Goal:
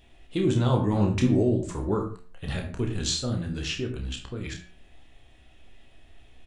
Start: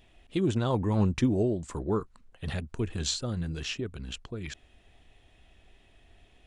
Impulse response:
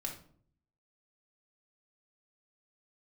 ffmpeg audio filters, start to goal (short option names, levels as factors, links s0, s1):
-filter_complex "[0:a]asplit=2[s0][s1];[s1]adelay=16,volume=0.266[s2];[s0][s2]amix=inputs=2:normalize=0,bandreject=f=89.11:t=h:w=4,bandreject=f=178.22:t=h:w=4,bandreject=f=267.33:t=h:w=4,bandreject=f=356.44:t=h:w=4,bandreject=f=445.55:t=h:w=4,bandreject=f=534.66:t=h:w=4,bandreject=f=623.77:t=h:w=4,bandreject=f=712.88:t=h:w=4,bandreject=f=801.99:t=h:w=4,bandreject=f=891.1:t=h:w=4,bandreject=f=980.21:t=h:w=4,bandreject=f=1069.32:t=h:w=4,bandreject=f=1158.43:t=h:w=4,bandreject=f=1247.54:t=h:w=4,bandreject=f=1336.65:t=h:w=4,bandreject=f=1425.76:t=h:w=4,bandreject=f=1514.87:t=h:w=4,bandreject=f=1603.98:t=h:w=4,bandreject=f=1693.09:t=h:w=4,bandreject=f=1782.2:t=h:w=4,bandreject=f=1871.31:t=h:w=4,bandreject=f=1960.42:t=h:w=4,bandreject=f=2049.53:t=h:w=4,bandreject=f=2138.64:t=h:w=4,bandreject=f=2227.75:t=h:w=4,bandreject=f=2316.86:t=h:w=4,bandreject=f=2405.97:t=h:w=4,bandreject=f=2495.08:t=h:w=4,bandreject=f=2584.19:t=h:w=4,bandreject=f=2673.3:t=h:w=4,bandreject=f=2762.41:t=h:w=4,bandreject=f=2851.52:t=h:w=4,bandreject=f=2940.63:t=h:w=4,asplit=2[s3][s4];[1:a]atrim=start_sample=2205,atrim=end_sample=6615,adelay=29[s5];[s4][s5]afir=irnorm=-1:irlink=0,volume=0.668[s6];[s3][s6]amix=inputs=2:normalize=0,volume=1.19"